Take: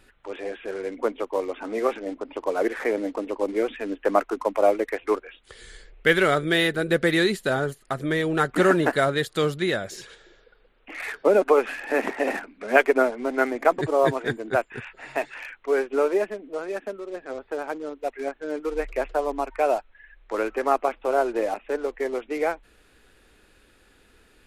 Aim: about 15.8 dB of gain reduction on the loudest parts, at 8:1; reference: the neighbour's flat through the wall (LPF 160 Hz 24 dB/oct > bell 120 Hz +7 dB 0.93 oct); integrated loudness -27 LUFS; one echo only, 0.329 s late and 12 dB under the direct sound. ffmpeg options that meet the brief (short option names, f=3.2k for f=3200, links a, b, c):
-af "acompressor=threshold=-30dB:ratio=8,lowpass=f=160:w=0.5412,lowpass=f=160:w=1.3066,equalizer=f=120:t=o:w=0.93:g=7,aecho=1:1:329:0.251,volume=19dB"